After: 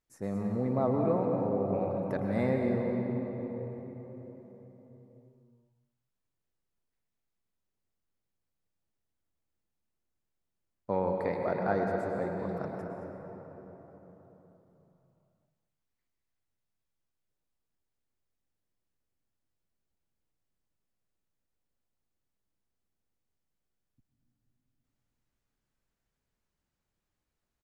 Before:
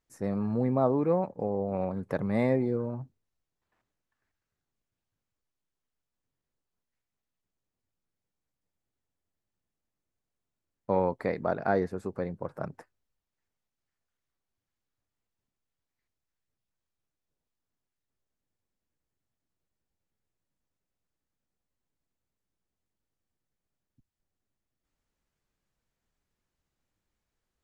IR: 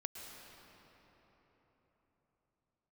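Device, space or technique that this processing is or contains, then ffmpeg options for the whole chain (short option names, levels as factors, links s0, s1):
cave: -filter_complex "[0:a]aecho=1:1:221:0.237[s0];[1:a]atrim=start_sample=2205[s1];[s0][s1]afir=irnorm=-1:irlink=0,asettb=1/sr,asplit=3[s2][s3][s4];[s2]atrim=end=12.394[s5];[s3]atrim=start=12.39:end=12.79,asetpts=PTS-STARTPTS,afade=t=in:d=0.004:c=qsin,afade=t=out:st=0.396:d=0.004:c=qsin,equalizer=f=4100:w=1.5:g=5.5[s6];[s4]atrim=start=12.786[s7];[s5][s6]acrossfade=d=0.004:c1=hsin:c2=qsin[s8];[s8][s7]acrossfade=d=0.004:c1=qsin:c2=hsin"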